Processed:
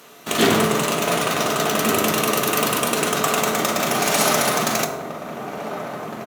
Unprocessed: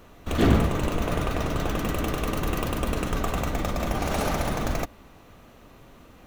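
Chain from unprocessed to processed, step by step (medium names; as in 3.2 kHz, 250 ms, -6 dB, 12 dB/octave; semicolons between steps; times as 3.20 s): peaking EQ 10 kHz +10.5 dB 2.7 oct; in parallel at -8 dB: Schmitt trigger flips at -32.5 dBFS; on the sum: high-pass 140 Hz 24 dB/octave; bass shelf 320 Hz -9 dB; echo from a far wall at 250 m, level -7 dB; on a send at -4 dB: reverberation RT60 1.1 s, pre-delay 4 ms; on the sum: trim +5 dB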